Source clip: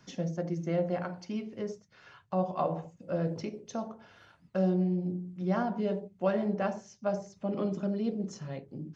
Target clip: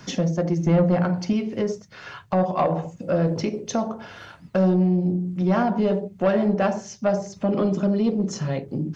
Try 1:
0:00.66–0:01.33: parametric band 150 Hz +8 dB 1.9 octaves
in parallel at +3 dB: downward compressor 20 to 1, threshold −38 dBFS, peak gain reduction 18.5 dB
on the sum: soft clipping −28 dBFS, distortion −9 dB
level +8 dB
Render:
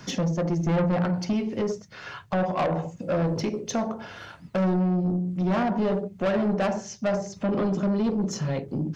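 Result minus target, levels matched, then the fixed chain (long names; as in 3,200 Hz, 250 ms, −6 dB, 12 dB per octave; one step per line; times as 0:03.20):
soft clipping: distortion +9 dB
0:00.66–0:01.33: parametric band 150 Hz +8 dB 1.9 octaves
in parallel at +3 dB: downward compressor 20 to 1, threshold −38 dBFS, peak gain reduction 18.5 dB
on the sum: soft clipping −19.5 dBFS, distortion −18 dB
level +8 dB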